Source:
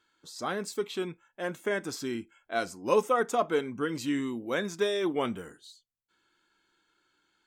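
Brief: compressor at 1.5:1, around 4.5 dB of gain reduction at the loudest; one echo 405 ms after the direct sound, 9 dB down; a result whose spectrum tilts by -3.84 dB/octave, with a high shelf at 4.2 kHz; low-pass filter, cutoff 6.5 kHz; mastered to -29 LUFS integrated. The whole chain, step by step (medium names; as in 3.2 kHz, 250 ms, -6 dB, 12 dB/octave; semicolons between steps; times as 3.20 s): low-pass 6.5 kHz; treble shelf 4.2 kHz -5.5 dB; compression 1.5:1, threshold -32 dBFS; delay 405 ms -9 dB; trim +5 dB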